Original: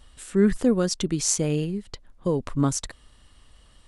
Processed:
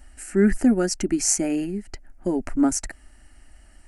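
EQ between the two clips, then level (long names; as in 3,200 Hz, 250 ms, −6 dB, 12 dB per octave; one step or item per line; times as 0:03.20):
phaser with its sweep stopped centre 720 Hz, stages 8
+5.5 dB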